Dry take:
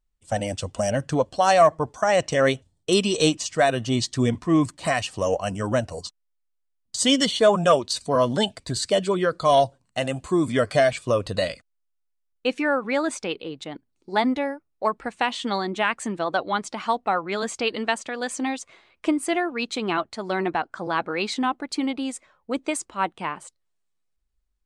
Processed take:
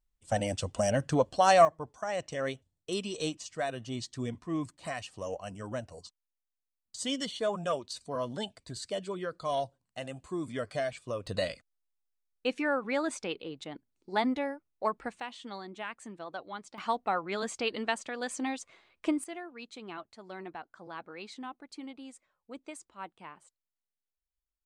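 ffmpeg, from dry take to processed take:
ffmpeg -i in.wav -af "asetnsamples=nb_out_samples=441:pad=0,asendcmd='1.65 volume volume -14dB;11.27 volume volume -7dB;15.2 volume volume -16.5dB;16.78 volume volume -7dB;19.24 volume volume -18dB',volume=-4dB" out.wav

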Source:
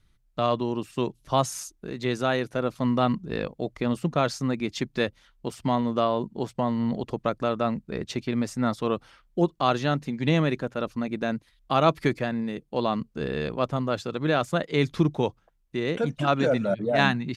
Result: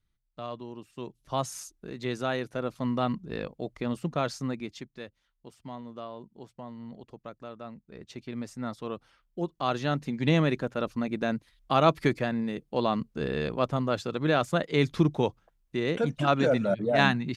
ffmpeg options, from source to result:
ffmpeg -i in.wav -af "volume=10.5dB,afade=type=in:start_time=0.95:duration=0.61:silence=0.375837,afade=type=out:start_time=4.46:duration=0.44:silence=0.266073,afade=type=in:start_time=7.86:duration=0.52:silence=0.446684,afade=type=in:start_time=9.4:duration=0.79:silence=0.375837" out.wav

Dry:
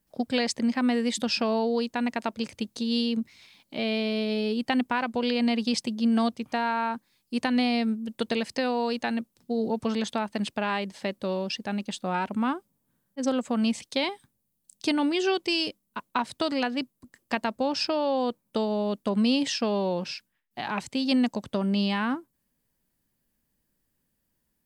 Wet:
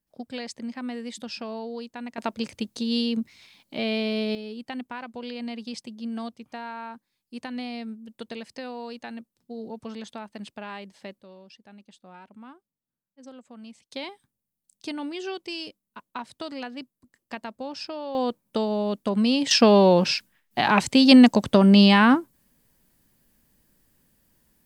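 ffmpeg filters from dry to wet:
ffmpeg -i in.wav -af "asetnsamples=nb_out_samples=441:pad=0,asendcmd='2.18 volume volume 1dB;4.35 volume volume -9.5dB;11.21 volume volume -19dB;13.91 volume volume -8dB;18.15 volume volume 1.5dB;19.51 volume volume 11dB',volume=-9dB" out.wav

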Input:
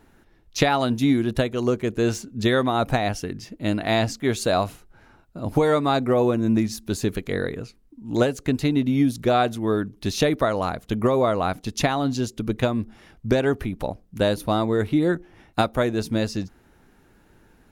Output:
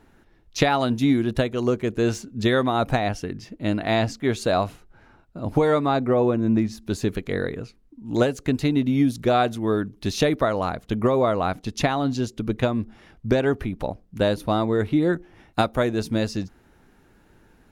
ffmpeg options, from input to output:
ffmpeg -i in.wav -af "asetnsamples=nb_out_samples=441:pad=0,asendcmd='2.99 lowpass f 4300;5.86 lowpass f 2300;6.82 lowpass f 5100;8.06 lowpass f 9400;10.39 lowpass f 5200;15.13 lowpass f 11000',lowpass=frequency=7300:poles=1" out.wav

